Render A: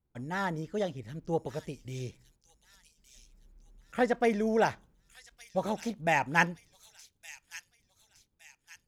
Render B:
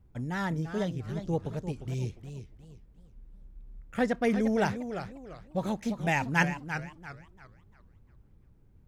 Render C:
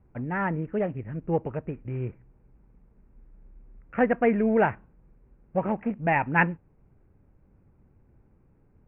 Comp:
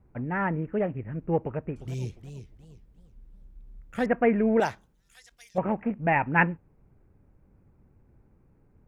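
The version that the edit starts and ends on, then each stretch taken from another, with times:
C
1.76–4.06 s: from B
4.60–5.58 s: from A

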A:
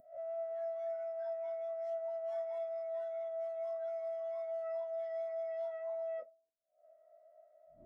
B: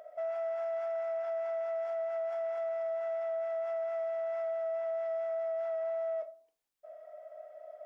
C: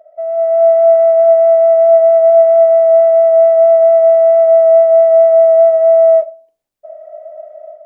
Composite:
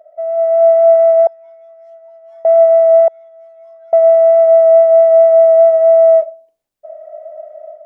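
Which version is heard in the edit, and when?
C
1.27–2.45 s: from A
3.08–3.93 s: from A
not used: B

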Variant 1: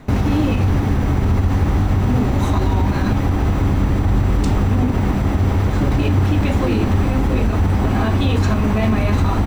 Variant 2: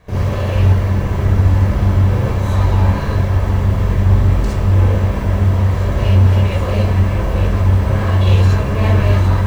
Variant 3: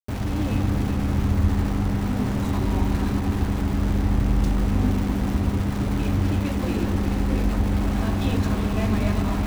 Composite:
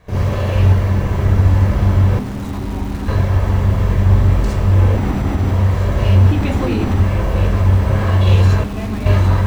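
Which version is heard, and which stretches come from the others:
2
2.19–3.08 s: from 3
4.96–5.51 s: from 1
6.31–7.00 s: from 1
8.64–9.06 s: from 3

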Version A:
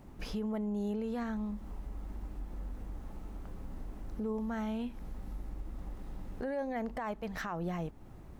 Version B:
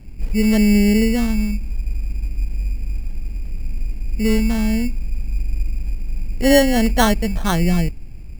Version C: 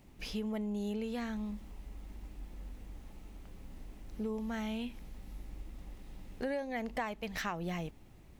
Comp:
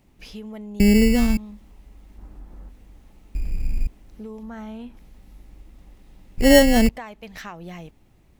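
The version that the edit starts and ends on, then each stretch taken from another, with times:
C
0.80–1.37 s: from B
2.18–2.69 s: from A
3.35–3.87 s: from B
4.43–4.97 s: from A
6.38–6.89 s: from B

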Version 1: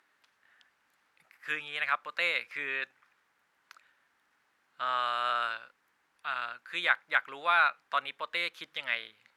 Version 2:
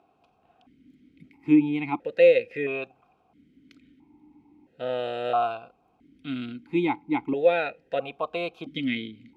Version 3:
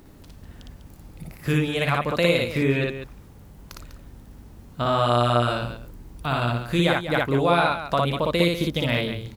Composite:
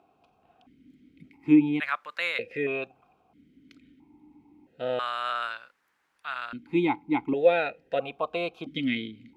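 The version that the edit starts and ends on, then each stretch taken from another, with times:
2
1.80–2.39 s: from 1
4.99–6.53 s: from 1
not used: 3

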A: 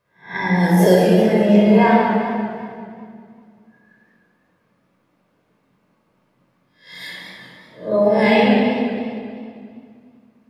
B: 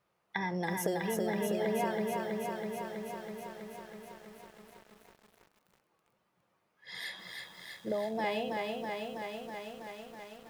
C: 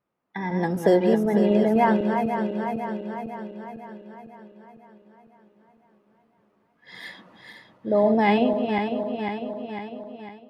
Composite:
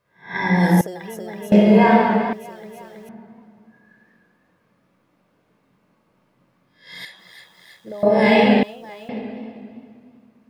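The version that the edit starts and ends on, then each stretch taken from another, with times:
A
0.81–1.52 s: from B
2.33–3.09 s: from B
7.05–8.03 s: from B
8.63–9.09 s: from B
not used: C

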